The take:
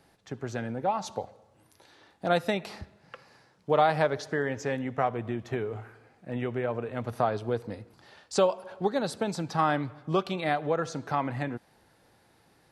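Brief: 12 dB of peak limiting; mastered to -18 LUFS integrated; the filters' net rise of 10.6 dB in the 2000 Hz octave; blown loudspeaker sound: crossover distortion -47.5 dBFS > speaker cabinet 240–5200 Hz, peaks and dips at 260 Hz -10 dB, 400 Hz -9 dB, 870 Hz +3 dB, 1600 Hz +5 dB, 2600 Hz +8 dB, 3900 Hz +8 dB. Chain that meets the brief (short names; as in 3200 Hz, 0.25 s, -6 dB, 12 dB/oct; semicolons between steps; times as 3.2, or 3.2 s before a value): bell 2000 Hz +7.5 dB; limiter -20 dBFS; crossover distortion -47.5 dBFS; speaker cabinet 240–5200 Hz, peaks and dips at 260 Hz -10 dB, 400 Hz -9 dB, 870 Hz +3 dB, 1600 Hz +5 dB, 2600 Hz +8 dB, 3900 Hz +8 dB; gain +15 dB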